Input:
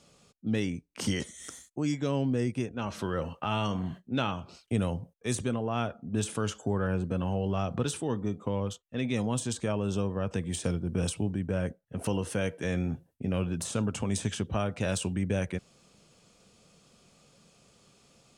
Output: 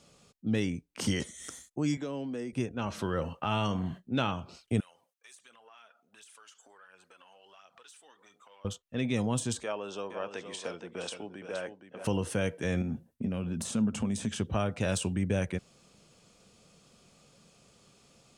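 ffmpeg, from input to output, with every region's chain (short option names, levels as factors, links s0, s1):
-filter_complex "[0:a]asettb=1/sr,asplit=3[s0][s1][s2];[s0]atrim=end=1.974[s3];[s1]atrim=start=1.97:end=2.53,asetpts=PTS-STARTPTS,afade=t=in:d=0.004:c=qsin,afade=t=out:st=0.556:d=0.004:c=qsin,highpass=f=170:w=0.5412,highpass=f=170:w=1.3066,acrossover=split=520|1400[s4][s5][s6];[s4]acompressor=threshold=0.0141:ratio=4[s7];[s5]acompressor=threshold=0.00708:ratio=4[s8];[s6]acompressor=threshold=0.00251:ratio=4[s9];[s7][s8][s9]amix=inputs=3:normalize=0[s10];[s2]atrim=start=2.526[s11];[s3][s10]acrossfade=d=0.004:c1=hsin:c2=qsin[s12];[s12][s11]acrossfade=d=0.004:c1=qsin:c2=hsin,asettb=1/sr,asplit=3[s13][s14][s15];[s13]atrim=end=4.804[s16];[s14]atrim=start=4.8:end=8.65,asetpts=PTS-STARTPTS,afade=t=in:d=0.004:c=qsin,afade=t=out:st=3.846:d=0.004:c=qsin,highpass=1400,acompressor=threshold=0.00158:ratio=4:attack=3.2:release=140:knee=1:detection=peak,aphaser=in_gain=1:out_gain=1:delay=4.7:decay=0.43:speed=1.4:type=triangular[s17];[s15]atrim=start=8.646[s18];[s16][s17]acrossfade=d=0.004:c1=hsin:c2=qsin[s19];[s19][s18]acrossfade=d=0.004:c1=qsin:c2=hsin,asettb=1/sr,asplit=3[s20][s21][s22];[s20]atrim=end=9.634[s23];[s21]atrim=start=9.63:end=12.05,asetpts=PTS-STARTPTS,afade=t=in:d=0.004:c=qsin,afade=t=out:st=2.416:d=0.004:c=qsin,highpass=520,lowpass=5400,aecho=1:1:469:0.355,atrim=end_sample=106722[s24];[s22]atrim=start=12.046[s25];[s23][s24]acrossfade=d=0.004:c1=hsin:c2=qsin[s26];[s26][s25]acrossfade=d=0.004:c1=qsin:c2=hsin,asettb=1/sr,asplit=3[s27][s28][s29];[s27]atrim=end=12.814[s30];[s28]atrim=start=12.81:end=14.36,asetpts=PTS-STARTPTS,afade=t=in:d=0.004:c=qsin,afade=t=out:st=1.546:d=0.004:c=qsin,acompressor=threshold=0.0224:ratio=3:attack=3.2:release=140:knee=1:detection=peak,equalizer=f=220:w=4.7:g=13.5[s31];[s29]atrim=start=14.356[s32];[s30][s31]acrossfade=d=0.004:c1=hsin:c2=qsin[s33];[s33][s32]acrossfade=d=0.004:c1=qsin:c2=hsin"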